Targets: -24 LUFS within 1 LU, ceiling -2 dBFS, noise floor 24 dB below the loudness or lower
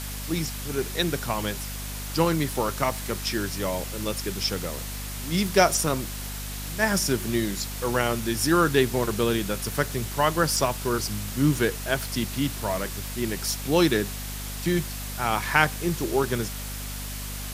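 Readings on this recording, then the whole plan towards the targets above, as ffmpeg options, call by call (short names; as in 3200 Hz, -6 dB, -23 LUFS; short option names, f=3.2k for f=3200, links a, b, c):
hum 50 Hz; harmonics up to 250 Hz; hum level -33 dBFS; noise floor -34 dBFS; noise floor target -50 dBFS; loudness -26.0 LUFS; peak -3.0 dBFS; loudness target -24.0 LUFS
-> -af "bandreject=f=50:t=h:w=4,bandreject=f=100:t=h:w=4,bandreject=f=150:t=h:w=4,bandreject=f=200:t=h:w=4,bandreject=f=250:t=h:w=4"
-af "afftdn=nr=16:nf=-34"
-af "volume=2dB,alimiter=limit=-2dB:level=0:latency=1"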